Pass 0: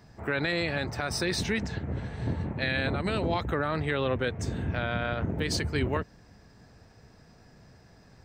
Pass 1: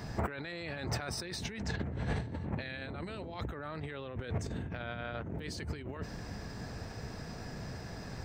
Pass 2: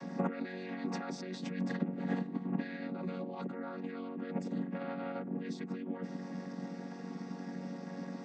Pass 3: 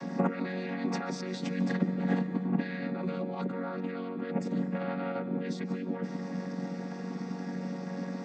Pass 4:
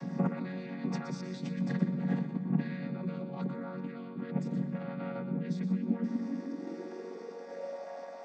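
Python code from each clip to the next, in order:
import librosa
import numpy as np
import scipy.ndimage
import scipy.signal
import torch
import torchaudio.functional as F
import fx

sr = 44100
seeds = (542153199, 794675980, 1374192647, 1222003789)

y1 = fx.over_compress(x, sr, threshold_db=-41.0, ratio=-1.0)
y1 = y1 * librosa.db_to_amplitude(2.0)
y2 = fx.chord_vocoder(y1, sr, chord='major triad', root=54)
y2 = y2 * librosa.db_to_amplitude(2.5)
y3 = fx.rev_freeverb(y2, sr, rt60_s=2.6, hf_ratio=0.55, predelay_ms=110, drr_db=11.5)
y3 = y3 * librosa.db_to_amplitude(5.5)
y4 = fx.tremolo_shape(y3, sr, shape='saw_down', hz=1.2, depth_pct=30)
y4 = fx.filter_sweep_highpass(y4, sr, from_hz=140.0, to_hz=650.0, start_s=5.26, end_s=7.93, q=6.3)
y4 = y4 + 10.0 ** (-10.0 / 20.0) * np.pad(y4, (int(121 * sr / 1000.0), 0))[:len(y4)]
y4 = y4 * librosa.db_to_amplitude(-6.0)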